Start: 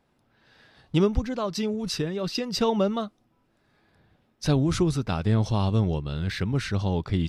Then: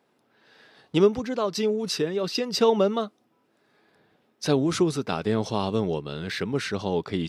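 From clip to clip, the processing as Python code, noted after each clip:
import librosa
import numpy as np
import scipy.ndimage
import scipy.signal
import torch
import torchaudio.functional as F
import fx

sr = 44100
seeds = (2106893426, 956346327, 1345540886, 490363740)

y = scipy.signal.sosfilt(scipy.signal.butter(2, 220.0, 'highpass', fs=sr, output='sos'), x)
y = fx.peak_eq(y, sr, hz=430.0, db=5.0, octaves=0.3)
y = y * librosa.db_to_amplitude(2.0)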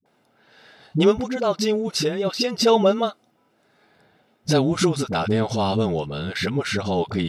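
y = x + 0.3 * np.pad(x, (int(1.4 * sr / 1000.0), 0))[:len(x)]
y = fx.dispersion(y, sr, late='highs', ms=59.0, hz=360.0)
y = y * librosa.db_to_amplitude(4.5)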